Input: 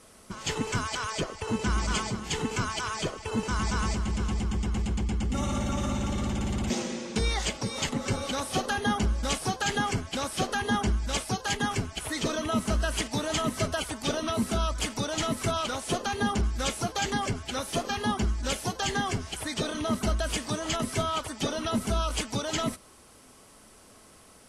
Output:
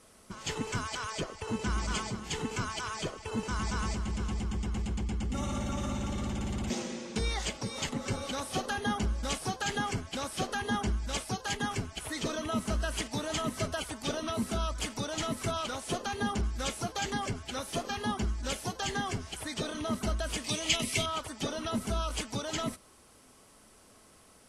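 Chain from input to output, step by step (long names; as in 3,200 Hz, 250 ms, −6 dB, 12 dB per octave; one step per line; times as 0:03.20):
0:20.44–0:21.06: high shelf with overshoot 1,900 Hz +7 dB, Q 3
level −4.5 dB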